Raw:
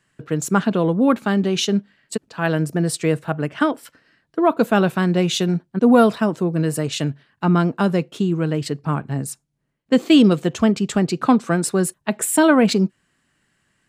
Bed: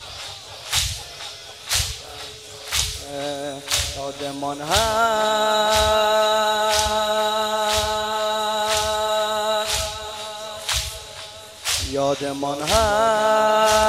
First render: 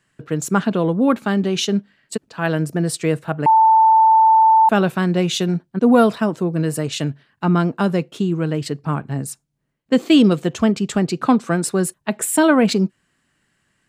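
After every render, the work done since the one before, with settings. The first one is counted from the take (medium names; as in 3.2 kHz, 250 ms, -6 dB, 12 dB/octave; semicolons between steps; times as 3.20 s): 3.46–4.69 s: bleep 887 Hz -8.5 dBFS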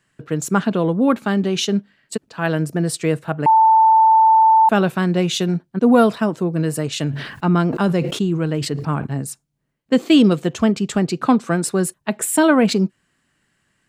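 6.92–9.07 s: decay stretcher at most 63 dB/s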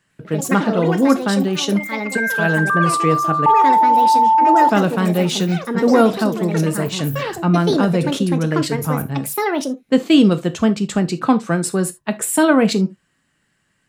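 ever faster or slower copies 105 ms, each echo +5 st, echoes 3, each echo -6 dB; gated-style reverb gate 100 ms falling, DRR 10 dB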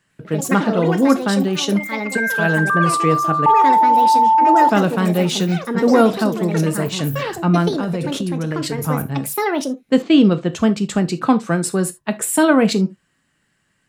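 7.68–8.79 s: compression 5:1, threshold -18 dBFS; 10.02–10.53 s: distance through air 120 m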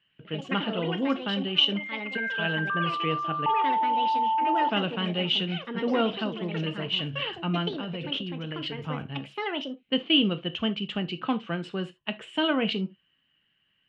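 four-pole ladder low-pass 3.1 kHz, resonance 85%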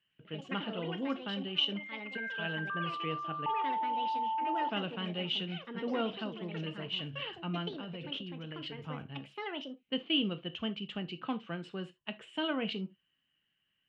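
trim -8.5 dB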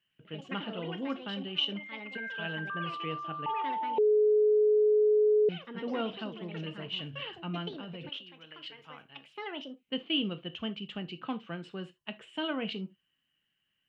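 3.98–5.49 s: bleep 424 Hz -20.5 dBFS; 8.09–9.35 s: high-pass 1.2 kHz 6 dB/octave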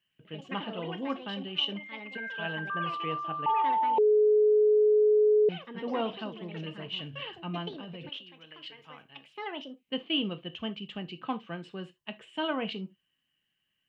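dynamic bell 920 Hz, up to +7 dB, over -44 dBFS, Q 1; band-stop 1.4 kHz, Q 12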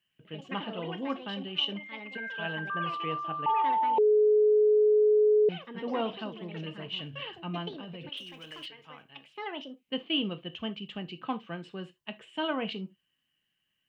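8.17–8.66 s: companding laws mixed up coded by mu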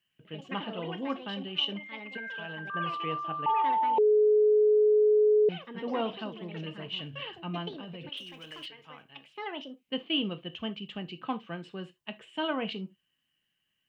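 2.18–2.74 s: compression, threshold -35 dBFS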